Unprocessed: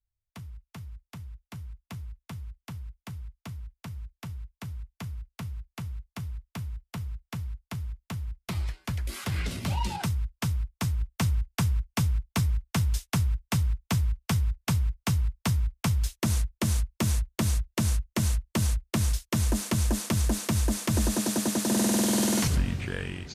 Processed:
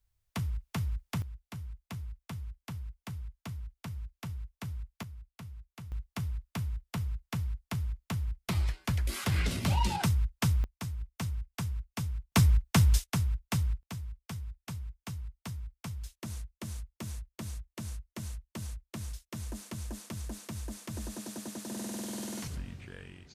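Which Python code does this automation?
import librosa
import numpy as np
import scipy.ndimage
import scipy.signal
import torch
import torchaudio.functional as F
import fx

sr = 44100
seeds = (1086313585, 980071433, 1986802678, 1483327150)

y = fx.gain(x, sr, db=fx.steps((0.0, 9.0), (1.22, -1.0), (5.03, -9.0), (5.92, 1.0), (10.64, -9.0), (12.32, 3.0), (13.04, -4.0), (13.83, -14.0)))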